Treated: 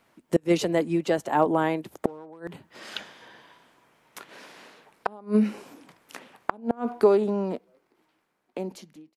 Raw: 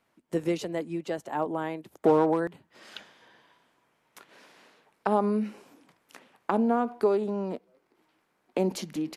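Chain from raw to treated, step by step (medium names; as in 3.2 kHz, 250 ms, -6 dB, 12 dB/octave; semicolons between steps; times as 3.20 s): fade out at the end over 2.82 s; inverted gate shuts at -16 dBFS, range -29 dB; trim +8 dB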